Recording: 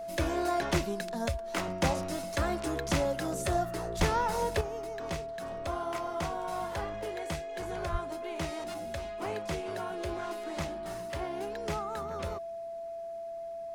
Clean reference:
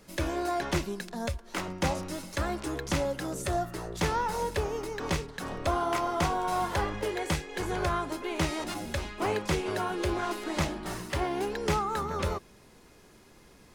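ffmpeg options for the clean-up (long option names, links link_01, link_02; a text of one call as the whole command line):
ffmpeg -i in.wav -filter_complex "[0:a]bandreject=frequency=670:width=30,asplit=3[link_01][link_02][link_03];[link_01]afade=type=out:start_time=3.98:duration=0.02[link_04];[link_02]highpass=frequency=140:width=0.5412,highpass=frequency=140:width=1.3066,afade=type=in:start_time=3.98:duration=0.02,afade=type=out:start_time=4.1:duration=0.02[link_05];[link_03]afade=type=in:start_time=4.1:duration=0.02[link_06];[link_04][link_05][link_06]amix=inputs=3:normalize=0,asplit=3[link_07][link_08][link_09];[link_07]afade=type=out:start_time=7.91:duration=0.02[link_10];[link_08]highpass=frequency=140:width=0.5412,highpass=frequency=140:width=1.3066,afade=type=in:start_time=7.91:duration=0.02,afade=type=out:start_time=8.03:duration=0.02[link_11];[link_09]afade=type=in:start_time=8.03:duration=0.02[link_12];[link_10][link_11][link_12]amix=inputs=3:normalize=0,asetnsamples=nb_out_samples=441:pad=0,asendcmd='4.61 volume volume 7.5dB',volume=0dB" out.wav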